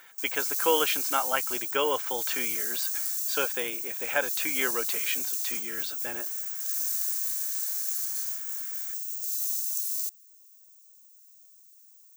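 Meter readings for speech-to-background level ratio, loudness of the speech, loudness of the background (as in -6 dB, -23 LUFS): -3.0 dB, -31.0 LUFS, -28.0 LUFS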